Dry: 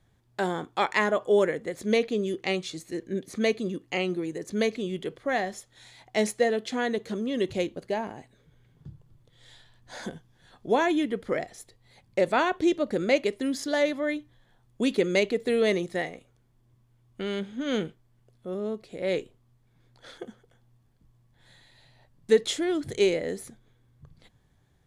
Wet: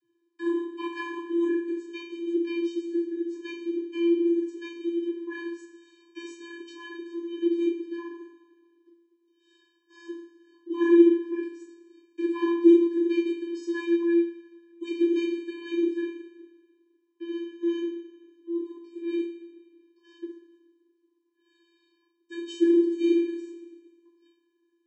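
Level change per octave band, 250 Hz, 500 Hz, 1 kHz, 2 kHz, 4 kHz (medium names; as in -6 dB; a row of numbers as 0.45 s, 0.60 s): +6.0 dB, -2.5 dB, -12.5 dB, -9.0 dB, no reading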